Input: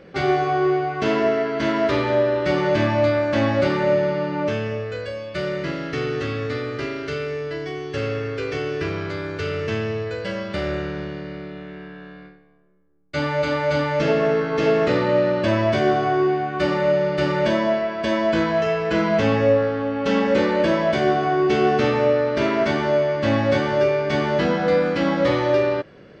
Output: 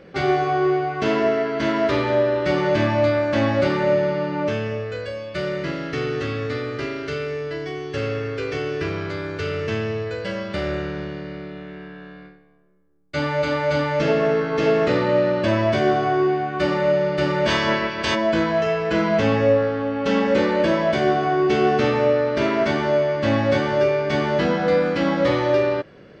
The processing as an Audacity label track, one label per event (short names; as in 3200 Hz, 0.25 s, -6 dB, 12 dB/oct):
17.470000	18.140000	spectral limiter ceiling under each frame's peak by 20 dB